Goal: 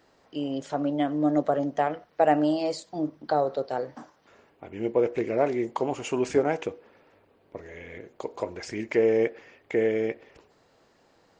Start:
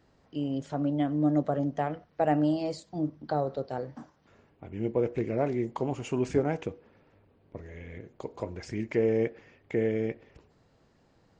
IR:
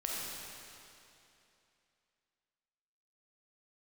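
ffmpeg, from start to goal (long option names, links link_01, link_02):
-af "bass=frequency=250:gain=-13,treble=frequency=4000:gain=1,volume=6dB"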